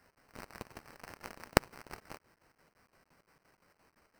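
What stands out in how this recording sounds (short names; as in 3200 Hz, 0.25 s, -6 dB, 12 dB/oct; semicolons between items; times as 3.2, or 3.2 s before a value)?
aliases and images of a low sample rate 3500 Hz, jitter 0%; chopped level 5.8 Hz, depth 65%, duty 60%; a quantiser's noise floor 12-bit, dither none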